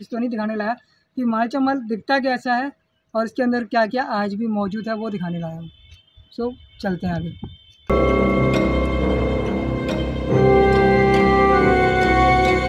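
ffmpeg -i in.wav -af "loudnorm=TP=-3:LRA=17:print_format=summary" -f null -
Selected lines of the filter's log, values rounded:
Input Integrated:    -18.5 LUFS
Input True Peak:      -3.4 dBTP
Input LRA:            10.1 LU
Input Threshold:     -29.0 LUFS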